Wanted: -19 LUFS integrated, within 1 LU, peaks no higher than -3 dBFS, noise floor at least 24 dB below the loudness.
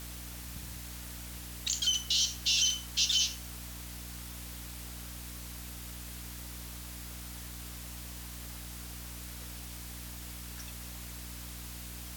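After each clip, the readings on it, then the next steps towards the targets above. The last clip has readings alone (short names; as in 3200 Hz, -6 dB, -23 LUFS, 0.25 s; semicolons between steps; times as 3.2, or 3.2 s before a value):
hum 60 Hz; harmonics up to 300 Hz; hum level -43 dBFS; noise floor -44 dBFS; noise floor target -59 dBFS; loudness -35.0 LUFS; peak -16.5 dBFS; loudness target -19.0 LUFS
-> notches 60/120/180/240/300 Hz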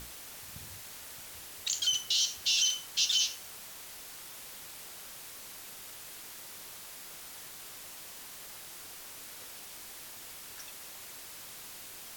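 hum none; noise floor -47 dBFS; noise floor target -59 dBFS
-> noise print and reduce 12 dB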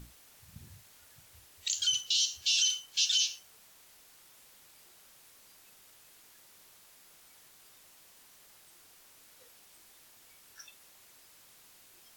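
noise floor -59 dBFS; loudness -28.0 LUFS; peak -16.5 dBFS; loudness target -19.0 LUFS
-> gain +9 dB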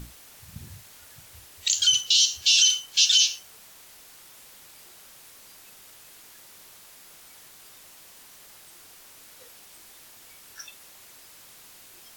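loudness -19.0 LUFS; peak -7.5 dBFS; noise floor -50 dBFS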